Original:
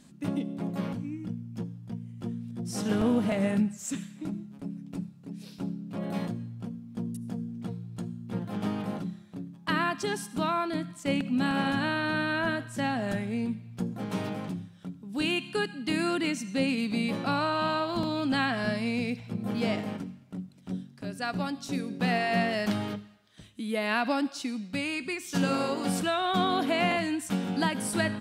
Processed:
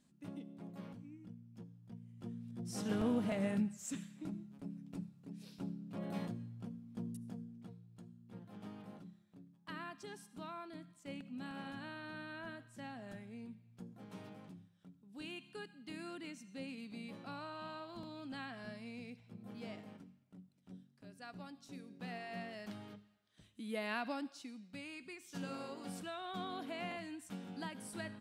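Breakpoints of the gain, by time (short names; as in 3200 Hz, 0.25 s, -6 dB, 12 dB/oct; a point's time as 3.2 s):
1.65 s -17 dB
2.54 s -9 dB
7.15 s -9 dB
7.84 s -19 dB
22.86 s -19 dB
23.76 s -10 dB
24.54 s -17 dB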